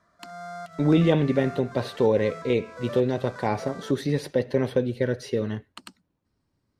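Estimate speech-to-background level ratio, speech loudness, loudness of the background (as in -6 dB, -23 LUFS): 16.0 dB, -25.0 LUFS, -41.0 LUFS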